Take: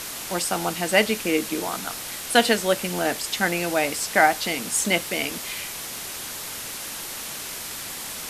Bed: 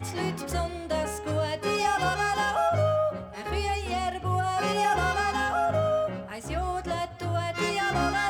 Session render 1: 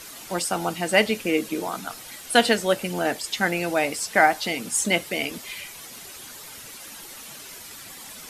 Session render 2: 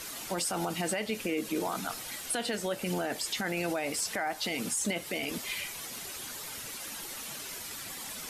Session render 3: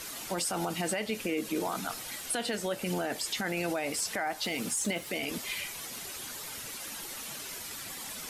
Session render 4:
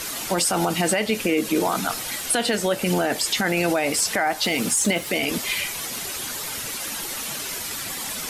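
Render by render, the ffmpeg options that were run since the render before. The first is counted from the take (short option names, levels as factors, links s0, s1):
-af "afftdn=nr=10:nf=-34"
-af "acompressor=threshold=0.0631:ratio=6,alimiter=limit=0.0794:level=0:latency=1:release=16"
-filter_complex "[0:a]asettb=1/sr,asplit=3[s0][s1][s2];[s0]atrim=end=4.444[s3];[s1]atrim=start=4.44:end=5.1,asetpts=PTS-STARTPTS,afade=t=in:d=0.004:c=qsin,afade=t=out:st=0.656:d=0.004:c=qsin,aeval=exprs='val(0)*gte(abs(val(0)),0.00376)':c=same[s4];[s2]atrim=start=5.096[s5];[s3][s4]acrossfade=d=0.004:c1=hsin:c2=qsin[s6];[s6][s5]acrossfade=d=0.004:c1=qsin:c2=hsin"
-af "volume=3.35"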